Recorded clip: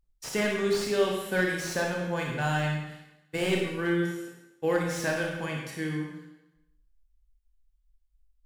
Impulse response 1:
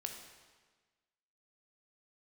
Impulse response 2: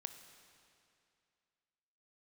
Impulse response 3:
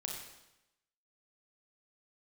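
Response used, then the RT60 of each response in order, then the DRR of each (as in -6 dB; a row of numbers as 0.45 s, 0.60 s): 3; 1.4 s, 2.4 s, 0.90 s; 3.0 dB, 8.0 dB, -0.5 dB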